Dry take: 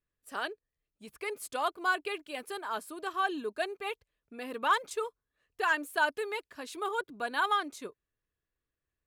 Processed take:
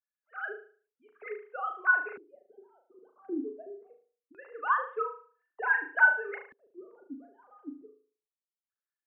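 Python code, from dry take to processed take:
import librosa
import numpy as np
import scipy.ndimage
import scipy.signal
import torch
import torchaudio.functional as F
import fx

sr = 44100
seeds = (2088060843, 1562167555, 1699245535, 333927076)

y = fx.sine_speech(x, sr)
y = fx.room_flutter(y, sr, wall_m=6.4, rt60_s=0.43)
y = fx.filter_lfo_lowpass(y, sr, shape='square', hz=0.23, low_hz=260.0, high_hz=1500.0, q=3.4)
y = y * 10.0 ** (-6.5 / 20.0)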